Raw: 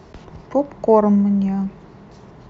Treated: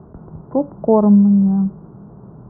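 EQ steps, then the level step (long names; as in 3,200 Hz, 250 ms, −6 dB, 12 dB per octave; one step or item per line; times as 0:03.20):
elliptic low-pass filter 1,400 Hz, stop band 50 dB
high-frequency loss of the air 480 metres
parametric band 160 Hz +8.5 dB 1.8 octaves
−1.0 dB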